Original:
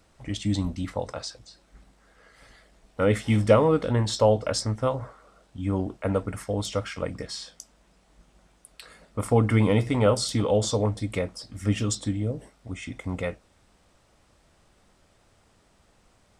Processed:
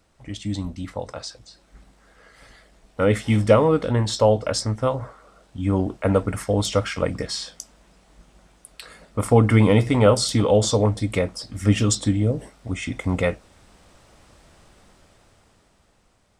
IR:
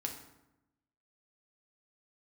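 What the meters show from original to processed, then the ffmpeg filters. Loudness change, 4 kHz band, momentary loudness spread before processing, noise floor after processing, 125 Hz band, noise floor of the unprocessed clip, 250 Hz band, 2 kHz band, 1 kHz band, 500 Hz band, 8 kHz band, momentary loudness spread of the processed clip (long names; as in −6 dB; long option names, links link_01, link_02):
+4.5 dB, +5.0 dB, 15 LU, −61 dBFS, +4.5 dB, −63 dBFS, +4.5 dB, +5.0 dB, +4.0 dB, +4.0 dB, +5.5 dB, 16 LU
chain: -af "dynaudnorm=framelen=350:gausssize=9:maxgain=12dB,volume=-2dB"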